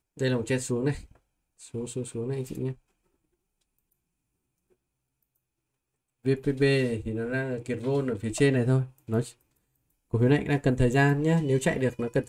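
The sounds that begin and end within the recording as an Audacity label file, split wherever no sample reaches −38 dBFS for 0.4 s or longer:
1.630000	2.730000	sound
6.250000	9.300000	sound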